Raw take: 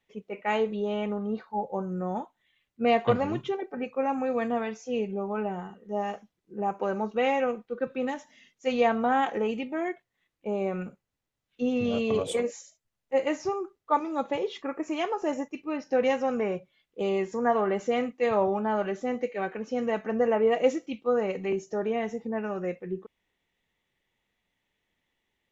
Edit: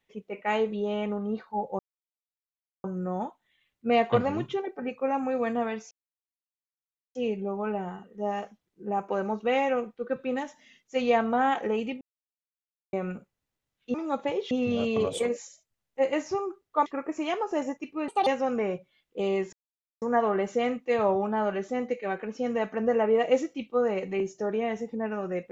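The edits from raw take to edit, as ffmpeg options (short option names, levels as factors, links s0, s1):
-filter_complex "[0:a]asplit=11[s0][s1][s2][s3][s4][s5][s6][s7][s8][s9][s10];[s0]atrim=end=1.79,asetpts=PTS-STARTPTS,afade=t=out:st=1.786:d=0.004:c=hsin,apad=pad_dur=1.05[s11];[s1]atrim=start=1.79:end=4.86,asetpts=PTS-STARTPTS,afade=t=in:d=0.004:c=hsin,afade=t=out:st=3.066:d=0.004:c=hsin,apad=pad_dur=1.24[s12];[s2]atrim=start=4.86:end=9.72,asetpts=PTS-STARTPTS,afade=t=in:d=0.004:c=hsin,afade=t=out:st=4.856:d=0.004:c=hsin[s13];[s3]atrim=start=9.72:end=10.64,asetpts=PTS-STARTPTS,volume=0[s14];[s4]atrim=start=10.64:end=11.652,asetpts=PTS-STARTPTS,afade=t=in:d=0.004:c=hsin[s15];[s5]atrim=start=13.998:end=14.572[s16];[s6]atrim=start=11.648:end=14.002[s17];[s7]atrim=start=14.568:end=15.794[s18];[s8]atrim=start=15.79:end=16.08,asetpts=PTS-STARTPTS,asetrate=68355,aresample=44100[s19];[s9]atrim=start=16.076:end=17.34,asetpts=PTS-STARTPTS,afade=t=out:st=1.26:d=0.004:c=hsin,apad=pad_dur=0.49[s20];[s10]atrim=start=17.34,asetpts=PTS-STARTPTS,afade=t=in:d=0.004:c=hsin[s21];[s11][s12][s13][s14][s15]concat=n=5:v=0:a=1[s22];[s22][s16]acrossfade=d=0.004:c1=hsin:c2=hsin[s23];[s23][s17]acrossfade=d=0.004:c1=hsin:c2=hsin[s24];[s24][s18]acrossfade=d=0.004:c1=hsin:c2=hsin[s25];[s25][s19]acrossfade=d=0.004:c1=hsin:c2=hsin[s26];[s20][s21]concat=n=2:v=0:a=1[s27];[s26][s27]acrossfade=d=0.004:c1=hsin:c2=hsin"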